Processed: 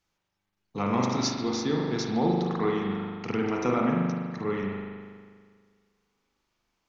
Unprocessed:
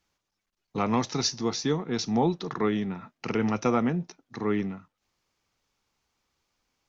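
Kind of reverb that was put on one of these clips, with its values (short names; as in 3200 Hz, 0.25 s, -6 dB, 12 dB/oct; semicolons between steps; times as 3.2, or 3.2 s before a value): spring tank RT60 1.8 s, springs 40 ms, chirp 35 ms, DRR -2 dB; gain -3.5 dB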